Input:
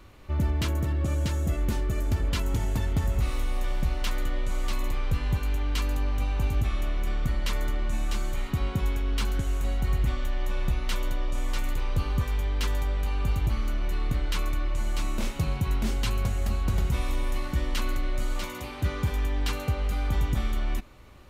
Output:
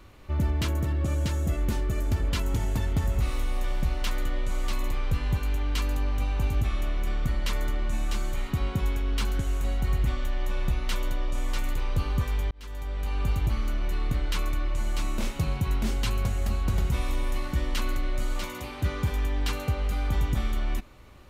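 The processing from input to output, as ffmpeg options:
-filter_complex "[0:a]asplit=2[a][b];[a]atrim=end=12.51,asetpts=PTS-STARTPTS,afade=t=out:st=12.506:d=0.004:c=hsin[c];[b]atrim=start=12.51,asetpts=PTS-STARTPTS,afade=t=in:d=0.69[d];[c][d]concat=n=2:v=0:a=1"

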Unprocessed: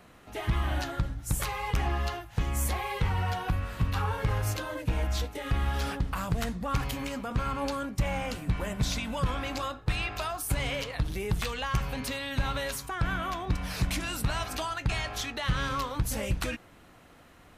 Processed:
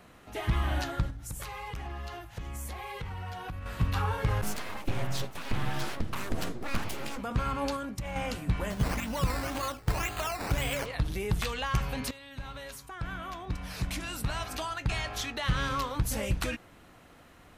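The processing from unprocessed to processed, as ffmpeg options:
-filter_complex "[0:a]asettb=1/sr,asplit=3[a][b][c];[a]atrim=end=1.104[d];[b]atrim=start=1.1:end=3.66,asetpts=PTS-STARTPTS,afade=t=in:d=0.004:c=qsin,afade=t=out:st=2.556:d=0.004:c=qsin,acompressor=threshold=-38dB:ratio=3:attack=3.2:release=140:knee=1:detection=peak[e];[c]atrim=start=3.656[f];[d][e]acrossfade=d=0.004:c1=hsin:c2=qsin[g];[g][f]acrossfade=d=0.004:c1=qsin:c2=hsin,asplit=3[h][i][j];[h]afade=t=out:st=4.41:d=0.02[k];[i]aeval=exprs='abs(val(0))':c=same,afade=t=in:st=4.41:d=0.02,afade=t=out:st=7.17:d=0.02[l];[j]afade=t=in:st=7.17:d=0.02[m];[k][l][m]amix=inputs=3:normalize=0,asettb=1/sr,asplit=3[n][o][p];[n]atrim=end=7.764[q];[o]atrim=start=7.76:end=8.16,asetpts=PTS-STARTPTS,afade=t=in:d=0.004:c=qsin,afade=t=out:st=0.396:d=0.004:c=qsin,acompressor=threshold=-32dB:ratio=6:attack=3.2:release=140:knee=1:detection=peak[r];[p]atrim=start=8.156[s];[q][r]acrossfade=d=0.004:c1=hsin:c2=qsin[t];[t][s]acrossfade=d=0.004:c1=qsin:c2=hsin,asettb=1/sr,asplit=3[u][v][w];[u]atrim=end=8.704[x];[v]atrim=start=8.7:end=10.86,asetpts=PTS-STARTPTS,afade=t=in:d=0.004:c=qsin,afade=t=out:st=2.156:d=0.004:c=qsin,acrusher=samples=11:mix=1:aa=0.000001:lfo=1:lforange=6.6:lforate=1.9[y];[w]atrim=start=10.856[z];[x][y]acrossfade=d=0.004:c1=hsin:c2=qsin[aa];[aa][z]acrossfade=d=0.004:c1=qsin:c2=hsin,asplit=2[ab][ac];[ab]atrim=end=12.11,asetpts=PTS-STARTPTS,afade=t=out:st=12.106:d=0.004:c=hsin:silence=0.188365[ad];[ac]atrim=start=12.11,asetpts=PTS-STARTPTS,afade=t=in:d=3.38:silence=0.188365[ae];[ad][ae]concat=n=2:v=0:a=1"

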